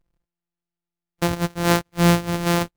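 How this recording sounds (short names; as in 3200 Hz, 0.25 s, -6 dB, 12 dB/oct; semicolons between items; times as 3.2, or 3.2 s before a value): a buzz of ramps at a fixed pitch in blocks of 256 samples; Vorbis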